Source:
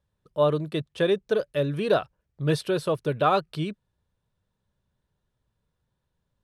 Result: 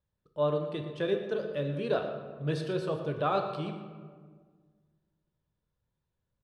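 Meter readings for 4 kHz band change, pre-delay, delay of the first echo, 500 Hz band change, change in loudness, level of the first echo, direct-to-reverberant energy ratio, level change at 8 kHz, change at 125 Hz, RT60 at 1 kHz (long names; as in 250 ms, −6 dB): −8.0 dB, 14 ms, 118 ms, −6.0 dB, −6.5 dB, −13.5 dB, 4.5 dB, below −10 dB, −5.5 dB, 1.6 s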